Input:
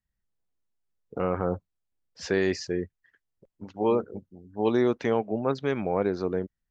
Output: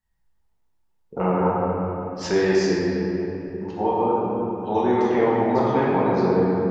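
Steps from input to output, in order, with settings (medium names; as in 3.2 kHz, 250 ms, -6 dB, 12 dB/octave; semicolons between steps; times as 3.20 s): peaking EQ 890 Hz +11.5 dB 0.28 oct; compression, threshold -24 dBFS, peak gain reduction 8 dB; 3.89–5.94 s: bands offset in time highs, lows 100 ms, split 3.4 kHz; simulated room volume 190 m³, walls hard, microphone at 1.1 m; trim +1.5 dB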